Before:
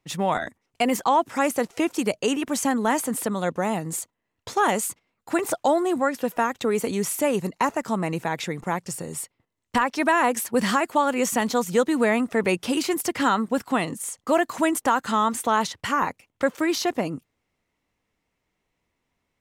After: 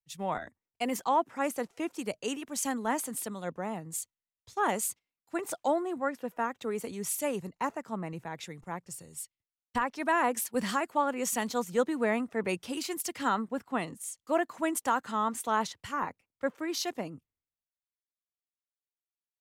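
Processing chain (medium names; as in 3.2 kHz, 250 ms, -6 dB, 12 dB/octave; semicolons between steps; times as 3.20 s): three bands expanded up and down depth 100%; trim -9 dB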